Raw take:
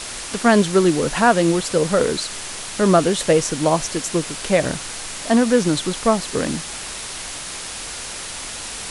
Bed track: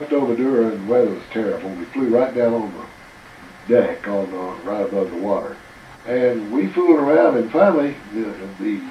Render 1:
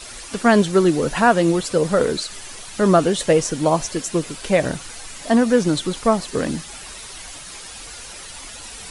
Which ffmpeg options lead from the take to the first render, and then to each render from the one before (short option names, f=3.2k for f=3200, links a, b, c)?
-af "afftdn=nr=10:nf=-32"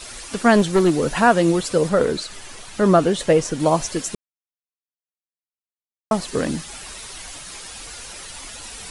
-filter_complex "[0:a]asettb=1/sr,asplit=3[a][b][c];[a]atrim=end=0.564[d];[b]atrim=start=0.56:end=1.23,asetpts=PTS-STARTPTS,afade=t=in:d=0.004:c=qsin,afade=t=out:st=0.666:d=0.004:c=qsin,aeval=exprs='clip(val(0),-1,0.211)':c=same[e];[c]atrim=start=1.226[f];[d][e]acrossfade=d=0.004:c1=hsin:c2=qsin[g];[g][f]acrossfade=d=0.004:c1=qsin:c2=hsin,asettb=1/sr,asplit=3[h][i][j];[h]atrim=end=1.894[k];[i]atrim=start=1.89:end=3.6,asetpts=PTS-STARTPTS,afade=t=in:d=0.004:c=qsin,afade=t=out:st=1.706:d=0.004:c=qsin,highshelf=f=4k:g=-5.5[l];[j]atrim=start=3.596[m];[k][l]acrossfade=d=0.004:c1=hsin:c2=qsin[n];[n][m]acrossfade=d=0.004:c1=qsin:c2=hsin,asplit=3[o][p][q];[o]atrim=end=4.15,asetpts=PTS-STARTPTS,afade=t=out:st=4.146:d=0.004:c=hsin[r];[p]atrim=start=4.15:end=6.11,asetpts=PTS-STARTPTS,volume=0[s];[q]atrim=start=6.11,asetpts=PTS-STARTPTS,afade=t=in:d=0.004:c=hsin[t];[r][s][t]concat=n=3:v=0:a=1"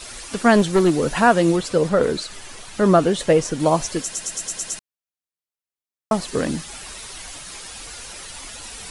-filter_complex "[0:a]asettb=1/sr,asplit=3[a][b][c];[a]atrim=end=1.564[d];[b]atrim=start=1.56:end=2.03,asetpts=PTS-STARTPTS,afade=t=in:d=0.004:c=qsin,afade=t=out:st=0.466:d=0.004:c=qsin,highshelf=f=8.2k:g=-8[e];[c]atrim=start=2.026[f];[d][e]acrossfade=d=0.004:c1=hsin:c2=qsin[g];[g][f]acrossfade=d=0.004:c1=qsin:c2=hsin,asplit=8[h][i][j][k][l][m][n][o];[h]atrim=end=4.132[p];[i]atrim=start=4.018:end=4.132[q];[j]atrim=start=4.018:end=4.132[r];[k]atrim=start=4.018:end=4.132[s];[l]atrim=start=4.018:end=4.132[t];[m]atrim=start=4.018:end=4.132[u];[n]atrim=start=4.018:end=4.132[v];[o]atrim=start=4.788[w];[p][q]acrossfade=d=0.004:c1=hsin:c2=hsin[x];[x][r]acrossfade=d=0.004:c1=hsin:c2=hsin[y];[y][s]acrossfade=d=0.004:c1=hsin:c2=hsin[z];[z][t]acrossfade=d=0.004:c1=hsin:c2=hsin[aa];[aa][u]acrossfade=d=0.004:c1=hsin:c2=hsin[ab];[ab][v]acrossfade=d=0.004:c1=hsin:c2=hsin[ac];[ac][w]acrossfade=d=0.004:c1=hsin:c2=hsin"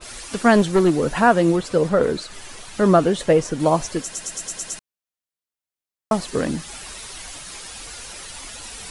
-af "adynamicequalizer=threshold=0.0158:dfrequency=2300:dqfactor=0.7:tfrequency=2300:tqfactor=0.7:attack=5:release=100:ratio=0.375:range=2.5:mode=cutabove:tftype=highshelf"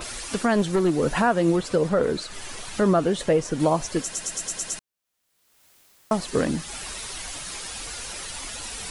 -af "acompressor=mode=upward:threshold=-30dB:ratio=2.5,alimiter=limit=-11dB:level=0:latency=1:release=256"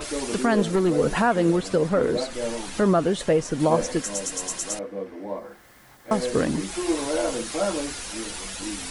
-filter_complex "[1:a]volume=-12dB[a];[0:a][a]amix=inputs=2:normalize=0"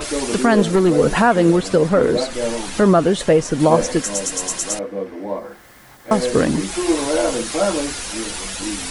-af "volume=6.5dB"